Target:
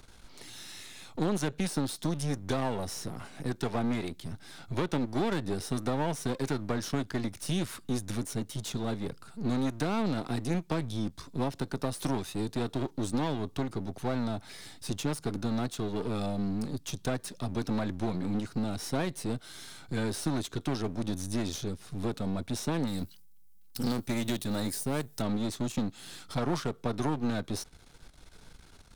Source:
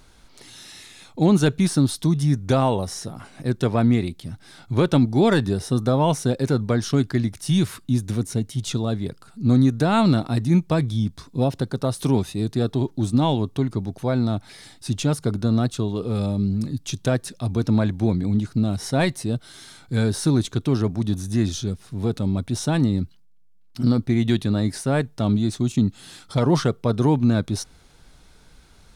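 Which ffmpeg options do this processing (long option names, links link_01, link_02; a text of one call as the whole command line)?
ffmpeg -i in.wav -filter_complex "[0:a]aeval=exprs='if(lt(val(0),0),0.251*val(0),val(0))':channel_layout=same,asettb=1/sr,asplit=3[link_01][link_02][link_03];[link_01]atrim=end=22.874[link_04];[link_02]atrim=start=22.87:end=25.22,asetpts=PTS-STARTPTS,afade=type=in:duration=0.004:curve=qsin,afade=type=out:start_time=2.346:duration=0.004:curve=qsin,aemphasis=mode=production:type=75fm[link_05];[link_03]atrim=start=25.216[link_06];[link_04][link_05]acrossfade=duration=0.004:curve1=hsin:curve2=qsin[link_07];[link_07][link_06]acrossfade=duration=0.004:curve1=qsin:curve2=hsin,acrossover=split=210|730[link_08][link_09][link_10];[link_08]acompressor=threshold=-36dB:ratio=4[link_11];[link_09]acompressor=threshold=-31dB:ratio=4[link_12];[link_10]acompressor=threshold=-36dB:ratio=4[link_13];[link_11][link_12][link_13]amix=inputs=3:normalize=0" out.wav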